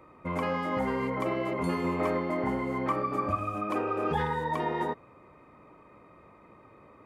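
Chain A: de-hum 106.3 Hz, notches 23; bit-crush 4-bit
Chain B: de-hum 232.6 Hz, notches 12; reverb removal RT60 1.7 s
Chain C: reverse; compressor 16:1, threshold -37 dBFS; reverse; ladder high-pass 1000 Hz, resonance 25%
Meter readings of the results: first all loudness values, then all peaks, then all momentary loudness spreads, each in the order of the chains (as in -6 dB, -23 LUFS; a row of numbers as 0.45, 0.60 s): -32.0, -33.5, -51.5 LUFS; -17.0, -18.0, -36.5 dBFS; 6, 3, 16 LU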